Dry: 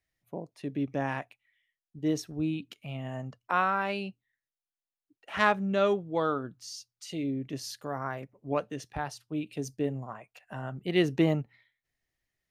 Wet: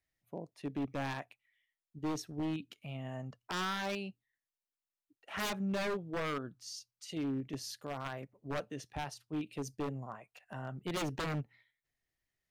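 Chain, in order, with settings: in parallel at -2 dB: level quantiser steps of 11 dB; on the sum: wavefolder -22.5 dBFS; gain -7.5 dB

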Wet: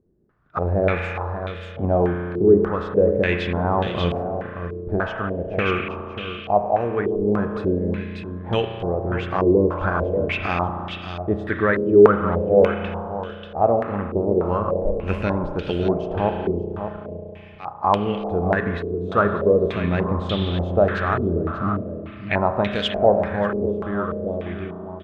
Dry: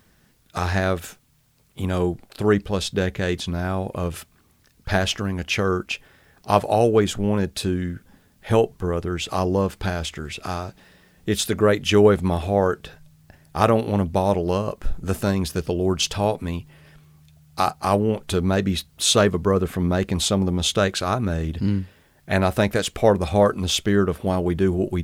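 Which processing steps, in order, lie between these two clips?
ending faded out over 4.16 s; 16.29–17.81 auto swell 0.364 s; AGC gain up to 14.5 dB; on a send: echo 0.588 s -10 dB; on the sum: spring tank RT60 2.9 s, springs 34 ms, chirp 70 ms, DRR 5 dB; stepped low-pass 3.4 Hz 390–3200 Hz; gain -9.5 dB

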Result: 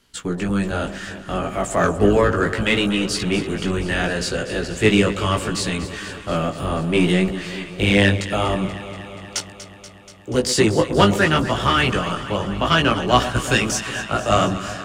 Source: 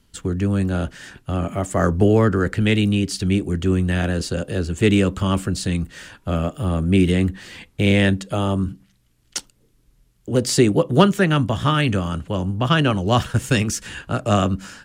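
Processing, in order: octaver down 1 oct, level -3 dB; de-esser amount 40%; overdrive pedal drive 14 dB, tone 6500 Hz, clips at 0 dBFS; chorus 0.68 Hz, delay 16 ms, depth 3.8 ms; on a send: echo with dull and thin repeats by turns 0.12 s, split 1000 Hz, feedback 85%, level -12.5 dB

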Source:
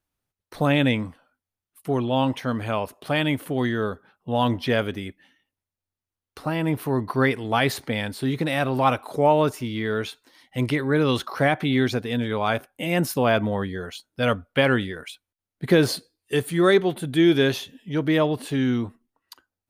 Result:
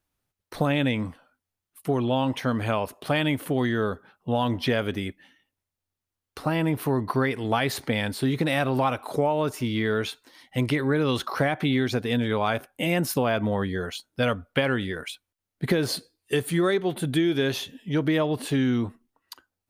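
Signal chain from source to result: compressor 10:1, threshold -22 dBFS, peak gain reduction 10 dB; gain +2.5 dB

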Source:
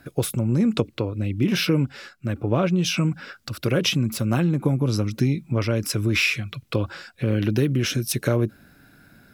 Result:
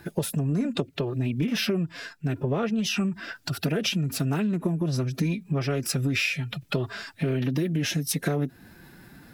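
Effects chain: compressor 3:1, threshold -28 dBFS, peak gain reduction 10 dB; formant-preserving pitch shift +3.5 st; gain +3.5 dB

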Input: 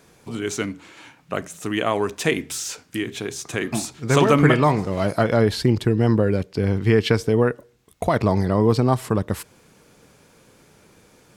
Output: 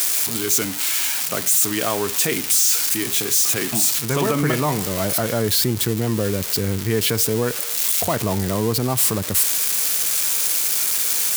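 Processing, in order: switching spikes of -11.5 dBFS; HPF 64 Hz 24 dB/oct; limiter -9.5 dBFS, peak gain reduction 8.5 dB

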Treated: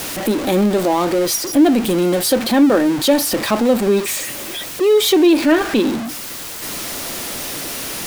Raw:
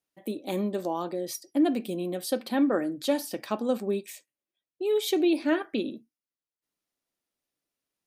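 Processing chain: zero-crossing step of -31.5 dBFS; in parallel at -3 dB: limiter -22.5 dBFS, peak gain reduction 9 dB; on the sum: gain +8 dB

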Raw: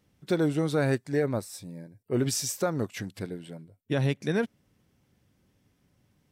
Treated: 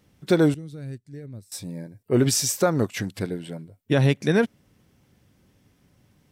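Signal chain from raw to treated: 0.54–1.52 passive tone stack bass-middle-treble 10-0-1; gain +7 dB

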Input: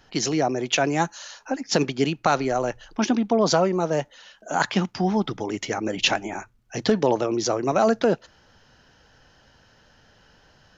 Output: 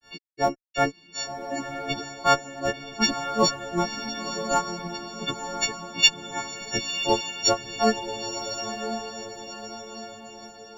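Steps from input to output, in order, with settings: frequency quantiser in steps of 4 st; grains 0.188 s, grains 2.7/s, spray 16 ms, pitch spread up and down by 0 st; in parallel at -11 dB: Schmitt trigger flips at -18 dBFS; on the sum: diffused feedback echo 1.014 s, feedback 46%, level -7 dB

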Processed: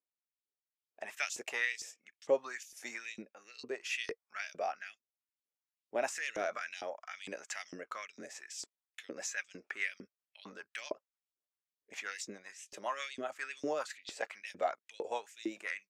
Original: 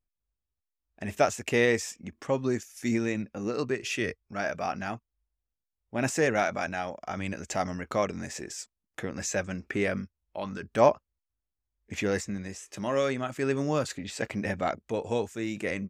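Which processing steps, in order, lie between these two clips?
rotary speaker horn 0.65 Hz, later 7.5 Hz, at 8.54; LFO high-pass saw up 2.2 Hz 340–4600 Hz; 6.12–6.81 transient shaper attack -5 dB, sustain +8 dB; gain -5.5 dB

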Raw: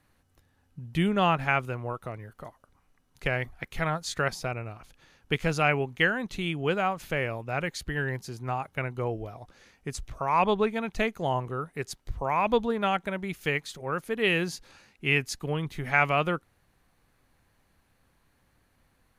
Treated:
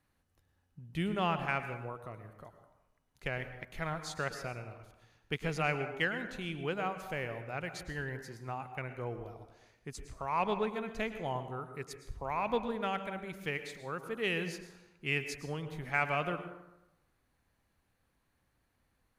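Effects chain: added harmonics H 7 -35 dB, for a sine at -8 dBFS; plate-style reverb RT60 0.91 s, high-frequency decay 0.55×, pre-delay 95 ms, DRR 9 dB; gain -8 dB

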